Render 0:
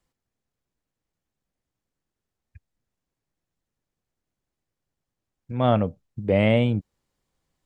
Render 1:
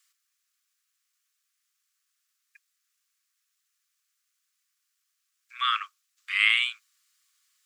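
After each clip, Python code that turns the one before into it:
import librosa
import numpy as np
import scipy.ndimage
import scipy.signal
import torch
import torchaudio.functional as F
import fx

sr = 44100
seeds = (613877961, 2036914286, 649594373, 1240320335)

y = scipy.signal.sosfilt(scipy.signal.cheby1(10, 1.0, 1100.0, 'highpass', fs=sr, output='sos'), x)
y = fx.high_shelf(y, sr, hz=2300.0, db=12.0)
y = F.gain(torch.from_numpy(y), 3.5).numpy()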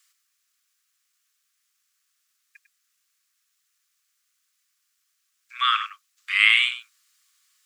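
y = x + 10.0 ** (-11.5 / 20.0) * np.pad(x, (int(99 * sr / 1000.0), 0))[:len(x)]
y = F.gain(torch.from_numpy(y), 4.5).numpy()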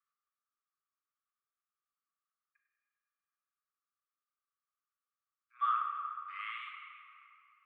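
y = fx.bandpass_q(x, sr, hz=1200.0, q=8.6)
y = fx.room_shoebox(y, sr, seeds[0], volume_m3=130.0, walls='hard', distance_m=0.38)
y = F.gain(torch.from_numpy(y), -7.0).numpy()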